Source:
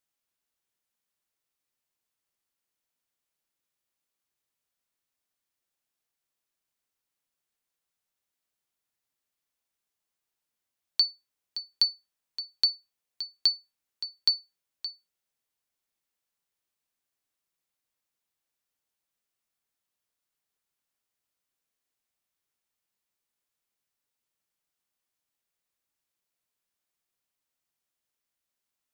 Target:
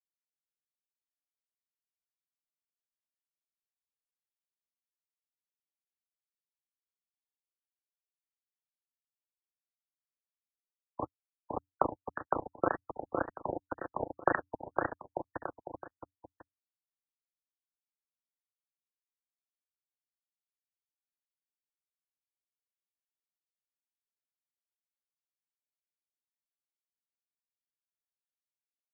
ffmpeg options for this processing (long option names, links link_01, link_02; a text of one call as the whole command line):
ffmpeg -i in.wav -filter_complex "[0:a]asplit=2[link_01][link_02];[link_02]acompressor=threshold=-32dB:ratio=10,volume=-1dB[link_03];[link_01][link_03]amix=inputs=2:normalize=0,aeval=exprs='sgn(val(0))*max(abs(val(0))-0.01,0)':channel_layout=same,adynamicsmooth=sensitivity=7.5:basefreq=570,highpass=frequency=240:width_type=q:width=0.5412,highpass=frequency=240:width_type=q:width=1.307,lowpass=frequency=3000:width_type=q:width=0.5176,lowpass=frequency=3000:width_type=q:width=0.7071,lowpass=frequency=3000:width_type=q:width=1.932,afreqshift=120,flanger=delay=5.6:depth=3.6:regen=80:speed=0.25:shape=sinusoidal,aeval=exprs='sgn(val(0))*max(abs(val(0))-0.00119,0)':channel_layout=same,afreqshift=-90,tremolo=f=200:d=0.947,aecho=1:1:510|892.5|1179|1395|1556:0.631|0.398|0.251|0.158|0.1,alimiter=level_in=33.5dB:limit=-1dB:release=50:level=0:latency=1,afftfilt=real='re*lt(b*sr/1024,890*pow(1900/890,0.5+0.5*sin(2*PI*1.9*pts/sr)))':imag='im*lt(b*sr/1024,890*pow(1900/890,0.5+0.5*sin(2*PI*1.9*pts/sr)))':win_size=1024:overlap=0.75,volume=2.5dB" out.wav